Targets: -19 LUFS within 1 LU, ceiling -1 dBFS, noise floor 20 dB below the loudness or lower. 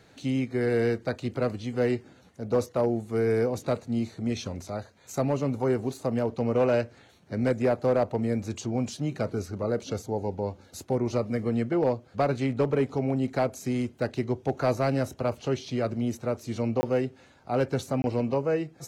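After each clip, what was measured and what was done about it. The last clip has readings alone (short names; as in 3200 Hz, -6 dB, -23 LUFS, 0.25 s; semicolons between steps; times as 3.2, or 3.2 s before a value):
clipped 0.4%; flat tops at -16.5 dBFS; dropouts 2; longest dropout 20 ms; loudness -28.5 LUFS; peak -16.5 dBFS; loudness target -19.0 LUFS
-> clip repair -16.5 dBFS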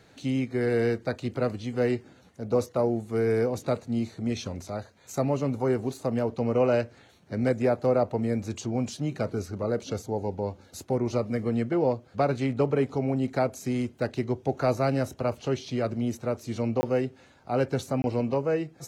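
clipped 0.0%; dropouts 2; longest dropout 20 ms
-> interpolate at 16.81/18.02, 20 ms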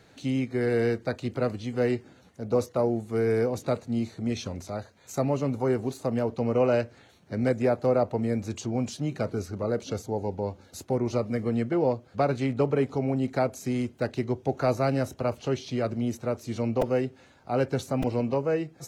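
dropouts 0; loudness -28.0 LUFS; peak -12.0 dBFS; loudness target -19.0 LUFS
-> gain +9 dB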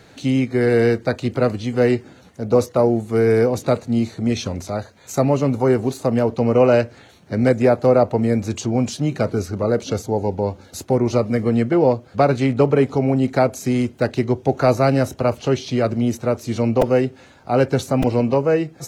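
loudness -19.0 LUFS; peak -3.0 dBFS; noise floor -48 dBFS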